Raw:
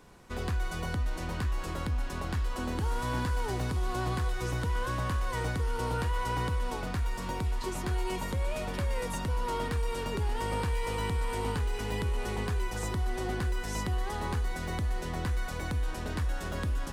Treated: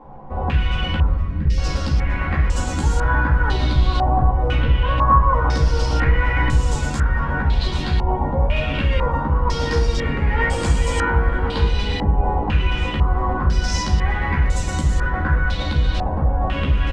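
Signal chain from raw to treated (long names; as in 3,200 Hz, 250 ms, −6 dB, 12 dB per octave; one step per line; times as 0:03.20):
0:00.96–0:01.58: inverse Chebyshev band-stop filter 360–1,200 Hz, stop band 40 dB
in parallel at −1 dB: brickwall limiter −32.5 dBFS, peak gain reduction 9.5 dB
on the sum: multi-voice chorus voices 6, 0.78 Hz, delay 14 ms, depth 1.1 ms
surface crackle 520 per second −44 dBFS
0:04.55–0:04.98: high-frequency loss of the air 160 metres
on a send: echo with shifted repeats 107 ms, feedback 62%, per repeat −120 Hz, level −16 dB
on the sum: rectangular room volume 980 cubic metres, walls furnished, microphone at 2.2 metres
low-pass on a step sequencer 2 Hz 810–7,300 Hz
level +6 dB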